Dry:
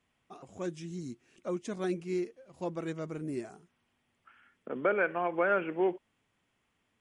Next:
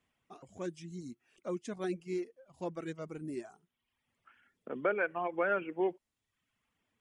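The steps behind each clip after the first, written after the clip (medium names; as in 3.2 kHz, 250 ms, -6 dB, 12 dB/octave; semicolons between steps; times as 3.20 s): reverb removal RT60 0.8 s; trim -2.5 dB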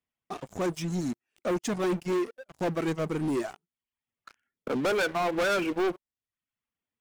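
waveshaping leveller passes 5; trim -3 dB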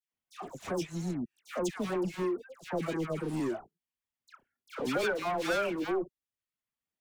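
phase dispersion lows, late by 124 ms, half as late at 1.4 kHz; trim -4 dB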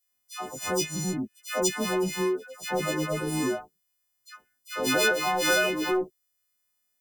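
partials quantised in pitch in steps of 3 st; trim +5 dB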